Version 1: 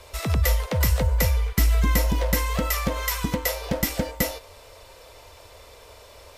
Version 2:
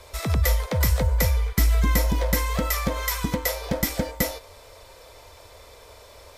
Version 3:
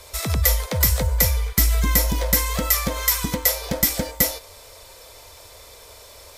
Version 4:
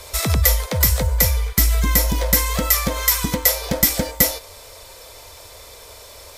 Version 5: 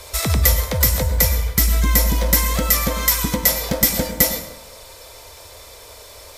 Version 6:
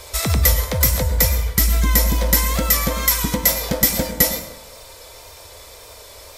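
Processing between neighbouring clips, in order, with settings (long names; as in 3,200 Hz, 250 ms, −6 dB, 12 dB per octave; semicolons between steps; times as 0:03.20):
notch filter 2,800 Hz, Q 9.9
high-shelf EQ 4,000 Hz +10.5 dB
speech leveller 0.5 s; level +2.5 dB
dense smooth reverb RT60 0.9 s, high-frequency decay 0.5×, pre-delay 90 ms, DRR 10 dB
tape wow and flutter 28 cents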